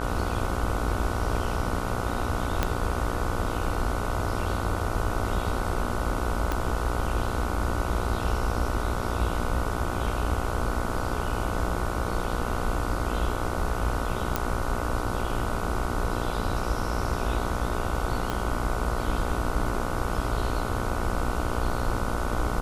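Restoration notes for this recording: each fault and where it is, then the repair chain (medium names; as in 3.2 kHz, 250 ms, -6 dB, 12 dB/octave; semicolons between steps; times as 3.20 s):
buzz 60 Hz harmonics 25 -32 dBFS
2.63 s: pop -9 dBFS
6.52 s: pop -13 dBFS
14.36 s: pop -9 dBFS
18.30 s: pop -14 dBFS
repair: de-click; de-hum 60 Hz, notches 25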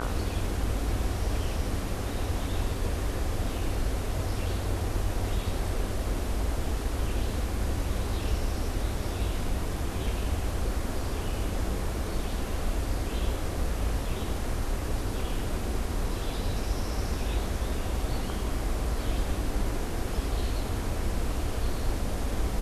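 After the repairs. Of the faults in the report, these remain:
2.63 s: pop
6.52 s: pop
18.30 s: pop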